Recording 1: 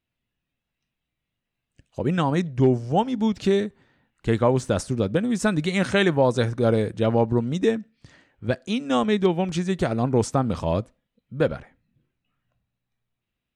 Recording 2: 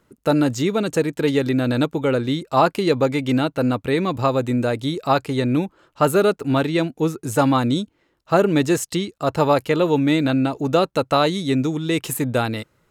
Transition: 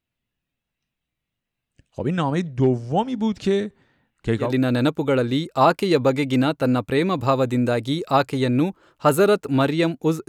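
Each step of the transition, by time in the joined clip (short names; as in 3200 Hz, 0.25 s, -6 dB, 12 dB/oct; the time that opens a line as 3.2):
recording 1
4.46 switch to recording 2 from 1.42 s, crossfade 0.18 s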